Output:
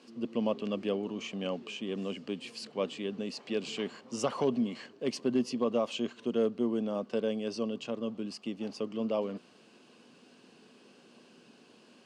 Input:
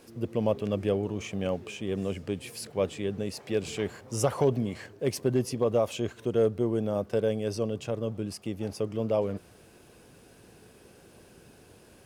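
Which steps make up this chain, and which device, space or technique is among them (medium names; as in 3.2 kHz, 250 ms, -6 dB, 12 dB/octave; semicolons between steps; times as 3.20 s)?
television speaker (cabinet simulation 170–7900 Hz, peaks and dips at 240 Hz +9 dB, 1.1 kHz +6 dB, 2.9 kHz +9 dB, 4.4 kHz +7 dB); trim -5.5 dB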